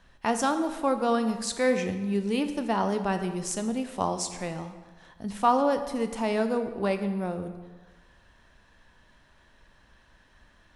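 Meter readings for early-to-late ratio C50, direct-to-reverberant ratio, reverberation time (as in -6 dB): 9.5 dB, 7.5 dB, 1.4 s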